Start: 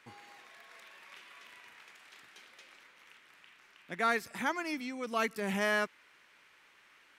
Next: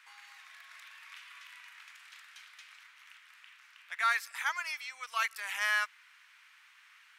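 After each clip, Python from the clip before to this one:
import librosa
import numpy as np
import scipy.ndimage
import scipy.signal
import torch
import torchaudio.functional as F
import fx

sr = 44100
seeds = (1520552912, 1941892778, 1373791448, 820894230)

y = scipy.signal.sosfilt(scipy.signal.butter(4, 1100.0, 'highpass', fs=sr, output='sos'), x)
y = y * librosa.db_to_amplitude(3.0)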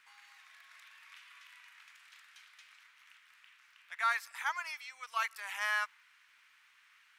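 y = fx.dynamic_eq(x, sr, hz=880.0, q=1.3, threshold_db=-48.0, ratio=4.0, max_db=7)
y = fx.dmg_crackle(y, sr, seeds[0], per_s=100.0, level_db=-61.0)
y = y * librosa.db_to_amplitude(-5.0)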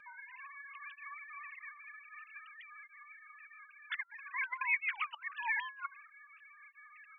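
y = fx.sine_speech(x, sr)
y = fx.over_compress(y, sr, threshold_db=-44.0, ratio=-0.5)
y = fx.flanger_cancel(y, sr, hz=0.52, depth_ms=2.7)
y = y * librosa.db_to_amplitude(9.0)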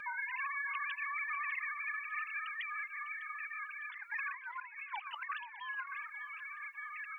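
y = fx.over_compress(x, sr, threshold_db=-49.0, ratio=-1.0)
y = fx.echo_feedback(y, sr, ms=601, feedback_pct=36, wet_db=-15.5)
y = y * librosa.db_to_amplitude(7.0)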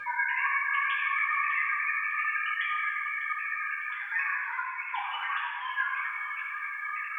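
y = fx.rev_fdn(x, sr, rt60_s=1.5, lf_ratio=0.8, hf_ratio=0.85, size_ms=58.0, drr_db=-6.0)
y = y * librosa.db_to_amplitude(3.5)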